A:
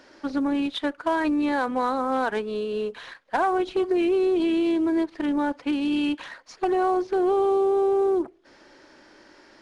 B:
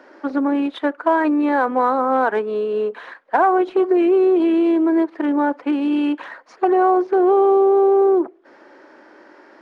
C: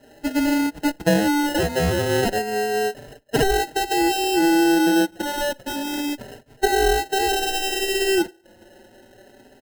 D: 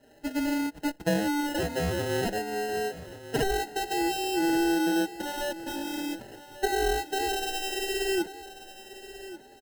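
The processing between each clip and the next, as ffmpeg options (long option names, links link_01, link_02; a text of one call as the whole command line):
ffmpeg -i in.wav -filter_complex "[0:a]acrossover=split=230 2000:gain=0.0631 1 0.158[link_01][link_02][link_03];[link_01][link_02][link_03]amix=inputs=3:normalize=0,volume=8dB" out.wav
ffmpeg -i in.wav -filter_complex "[0:a]acrusher=samples=38:mix=1:aa=0.000001,asplit=2[link_01][link_02];[link_02]adelay=4.6,afreqshift=0.3[link_03];[link_01][link_03]amix=inputs=2:normalize=1" out.wav
ffmpeg -i in.wav -af "aecho=1:1:1139|2278|3417:0.178|0.0498|0.0139,volume=-8dB" out.wav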